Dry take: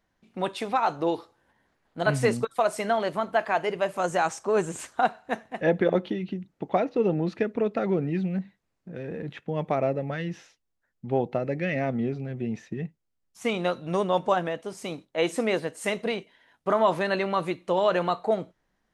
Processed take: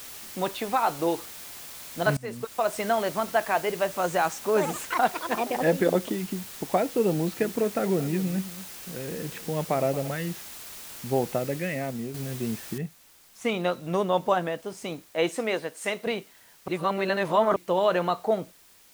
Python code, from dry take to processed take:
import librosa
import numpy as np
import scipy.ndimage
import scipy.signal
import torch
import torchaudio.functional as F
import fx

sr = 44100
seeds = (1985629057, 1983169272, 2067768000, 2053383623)

y = fx.brickwall_lowpass(x, sr, high_hz=4700.0, at=(0.56, 1.14), fade=0.02)
y = fx.echo_pitch(y, sr, ms=92, semitones=6, count=3, db_per_echo=-6.0, at=(4.45, 6.66))
y = fx.echo_single(y, sr, ms=228, db=-14.5, at=(7.18, 10.08))
y = fx.noise_floor_step(y, sr, seeds[0], at_s=12.78, before_db=-42, after_db=-56, tilt_db=0.0)
y = fx.low_shelf(y, sr, hz=260.0, db=-9.5, at=(15.29, 16.07))
y = fx.edit(y, sr, fx.fade_in_from(start_s=2.17, length_s=0.6, floor_db=-22.5),
    fx.fade_out_to(start_s=11.37, length_s=0.77, floor_db=-8.0),
    fx.reverse_span(start_s=16.68, length_s=0.88), tone=tone)